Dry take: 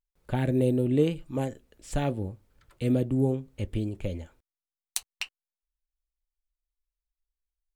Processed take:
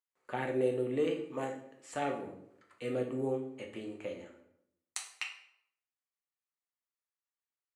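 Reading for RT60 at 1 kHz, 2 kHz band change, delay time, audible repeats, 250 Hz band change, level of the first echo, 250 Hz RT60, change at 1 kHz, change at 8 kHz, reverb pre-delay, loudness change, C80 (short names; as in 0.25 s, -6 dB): 0.65 s, -1.0 dB, none, none, -10.5 dB, none, 0.85 s, -0.5 dB, -6.5 dB, 4 ms, -7.5 dB, 11.5 dB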